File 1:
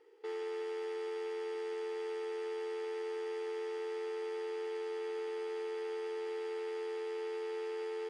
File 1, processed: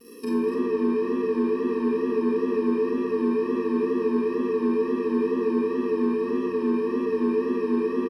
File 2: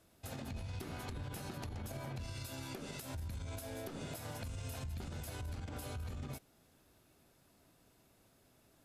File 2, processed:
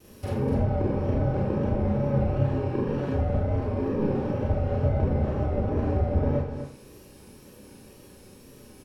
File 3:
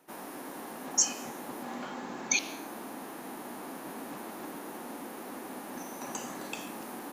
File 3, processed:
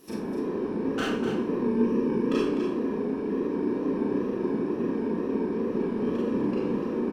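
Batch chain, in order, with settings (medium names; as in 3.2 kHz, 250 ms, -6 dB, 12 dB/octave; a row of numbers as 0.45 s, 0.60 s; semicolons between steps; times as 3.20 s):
bit-reversed sample order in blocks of 64 samples; low-pass that closes with the level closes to 1.2 kHz, closed at -41.5 dBFS; tone controls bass -5 dB, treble -3 dB; in parallel at -8 dB: saturation -39.5 dBFS; on the sum: wow and flutter 72 cents; hard clipper -35.5 dBFS; resonant low shelf 750 Hz +7 dB, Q 1.5; on a send: delay 250 ms -9 dB; on the sum: Schroeder reverb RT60 0.43 s, combs from 30 ms, DRR -3.5 dB; peak normalisation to -12 dBFS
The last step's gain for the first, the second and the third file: +10.0 dB, +10.0 dB, +6.0 dB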